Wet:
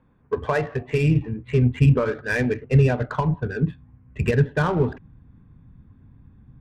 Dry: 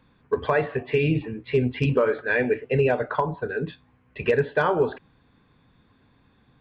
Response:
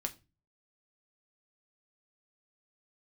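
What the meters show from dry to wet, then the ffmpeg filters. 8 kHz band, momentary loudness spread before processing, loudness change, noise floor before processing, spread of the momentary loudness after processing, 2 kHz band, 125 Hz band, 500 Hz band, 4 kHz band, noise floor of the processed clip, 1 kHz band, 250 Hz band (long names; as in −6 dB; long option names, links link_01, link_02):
can't be measured, 8 LU, +2.0 dB, −62 dBFS, 8 LU, −1.0 dB, +9.0 dB, −2.5 dB, −0.5 dB, −55 dBFS, −1.5 dB, +4.5 dB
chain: -af "adynamicsmooth=sensitivity=3.5:basefreq=1600,asubboost=boost=7:cutoff=190"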